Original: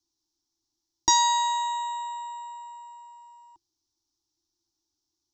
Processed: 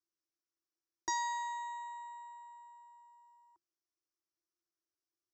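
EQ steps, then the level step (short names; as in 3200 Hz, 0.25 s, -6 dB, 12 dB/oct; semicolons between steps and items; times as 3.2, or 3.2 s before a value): band-pass 950 Hz, Q 0.55; fixed phaser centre 860 Hz, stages 6; -3.0 dB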